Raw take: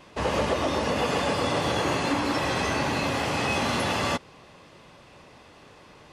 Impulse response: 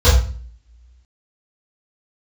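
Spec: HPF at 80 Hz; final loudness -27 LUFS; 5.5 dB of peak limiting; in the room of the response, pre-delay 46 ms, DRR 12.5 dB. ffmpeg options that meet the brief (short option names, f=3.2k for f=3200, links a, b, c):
-filter_complex "[0:a]highpass=80,alimiter=limit=-18.5dB:level=0:latency=1,asplit=2[a][b];[1:a]atrim=start_sample=2205,adelay=46[c];[b][c]afir=irnorm=-1:irlink=0,volume=-36dB[d];[a][d]amix=inputs=2:normalize=0,volume=-0.5dB"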